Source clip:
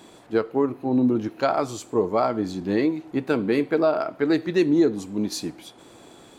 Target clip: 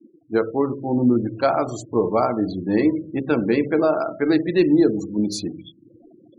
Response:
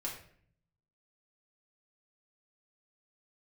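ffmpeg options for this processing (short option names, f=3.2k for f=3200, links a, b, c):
-filter_complex "[0:a]asplit=2[a][b];[1:a]atrim=start_sample=2205,lowshelf=f=190:g=11.5[c];[b][c]afir=irnorm=-1:irlink=0,volume=-8dB[d];[a][d]amix=inputs=2:normalize=0,afftfilt=real='re*gte(hypot(re,im),0.0251)':imag='im*gte(hypot(re,im),0.0251)':win_size=1024:overlap=0.75,bandreject=f=66.31:t=h:w=4,bandreject=f=132.62:t=h:w=4,bandreject=f=198.93:t=h:w=4,bandreject=f=265.24:t=h:w=4,bandreject=f=331.55:t=h:w=4,bandreject=f=397.86:t=h:w=4,bandreject=f=464.17:t=h:w=4,bandreject=f=530.48:t=h:w=4,bandreject=f=596.79:t=h:w=4"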